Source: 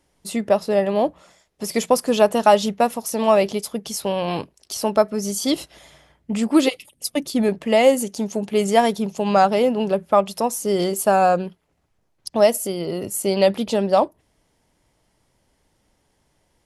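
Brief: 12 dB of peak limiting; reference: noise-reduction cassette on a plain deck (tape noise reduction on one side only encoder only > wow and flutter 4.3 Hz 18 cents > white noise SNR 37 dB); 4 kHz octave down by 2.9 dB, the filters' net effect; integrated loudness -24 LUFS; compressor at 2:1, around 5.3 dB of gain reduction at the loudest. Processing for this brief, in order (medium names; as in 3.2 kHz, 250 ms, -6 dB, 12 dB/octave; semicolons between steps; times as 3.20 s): peaking EQ 4 kHz -4 dB; compression 2:1, threshold -19 dBFS; peak limiter -18.5 dBFS; tape noise reduction on one side only encoder only; wow and flutter 4.3 Hz 18 cents; white noise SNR 37 dB; trim +4 dB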